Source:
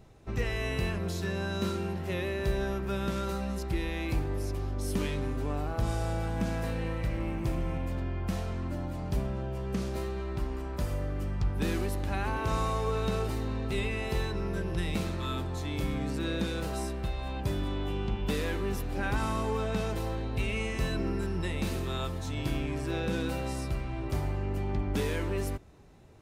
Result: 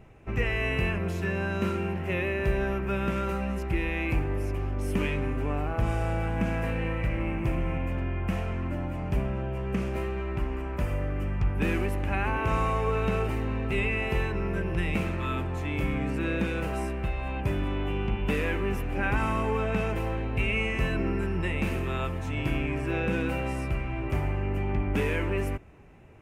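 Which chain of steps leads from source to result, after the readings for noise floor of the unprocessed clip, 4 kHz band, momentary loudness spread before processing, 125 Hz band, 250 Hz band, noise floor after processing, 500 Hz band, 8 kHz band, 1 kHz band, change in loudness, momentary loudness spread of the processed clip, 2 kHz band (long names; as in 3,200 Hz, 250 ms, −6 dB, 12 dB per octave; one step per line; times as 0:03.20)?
−36 dBFS, −1.0 dB, 3 LU, +3.0 dB, +3.0 dB, −33 dBFS, +3.0 dB, −5.5 dB, +3.5 dB, +3.5 dB, 4 LU, +6.5 dB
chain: high shelf with overshoot 3,200 Hz −7 dB, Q 3
level +3 dB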